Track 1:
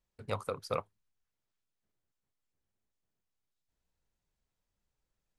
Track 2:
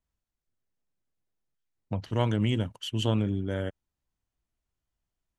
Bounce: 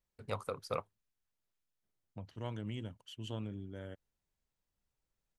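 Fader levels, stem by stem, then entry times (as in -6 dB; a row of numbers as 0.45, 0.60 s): -3.0, -15.0 dB; 0.00, 0.25 s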